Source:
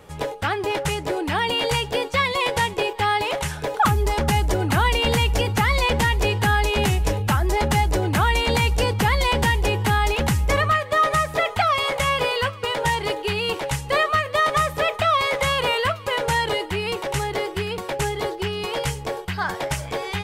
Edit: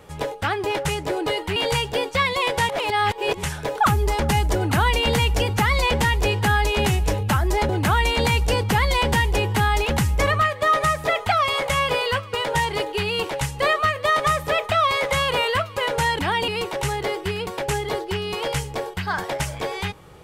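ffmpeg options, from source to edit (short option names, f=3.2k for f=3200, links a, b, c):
-filter_complex "[0:a]asplit=8[a][b][c][d][e][f][g][h];[a]atrim=end=1.262[i];[b]atrim=start=16.488:end=16.792[j];[c]atrim=start=1.548:end=2.682[k];[d]atrim=start=2.678:end=3.422,asetpts=PTS-STARTPTS,areverse[l];[e]atrim=start=3.418:end=7.682[m];[f]atrim=start=7.988:end=16.492[n];[g]atrim=start=1.258:end=1.552[o];[h]atrim=start=16.788[p];[i][j]acrossfade=d=0.004:c1=hsin:c2=hsin[q];[q][k]acrossfade=d=0.004:c1=hsin:c2=hsin[r];[r][l]acrossfade=d=0.004:c1=hsin:c2=hsin[s];[s][m]acrossfade=d=0.004:c1=hsin:c2=hsin[t];[t][n]acrossfade=d=0.004:c1=hsin:c2=hsin[u];[u][o]acrossfade=d=0.004:c1=hsin:c2=hsin[v];[v][p]acrossfade=d=0.004:c1=hsin:c2=hsin"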